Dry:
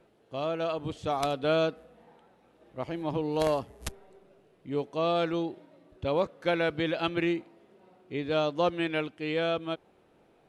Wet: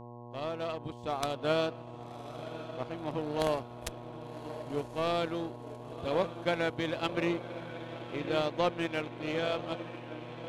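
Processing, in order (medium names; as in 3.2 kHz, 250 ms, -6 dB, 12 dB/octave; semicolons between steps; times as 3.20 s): echo that smears into a reverb 1082 ms, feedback 58%, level -8 dB; power-law waveshaper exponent 1.4; mains buzz 120 Hz, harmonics 9, -47 dBFS -3 dB/octave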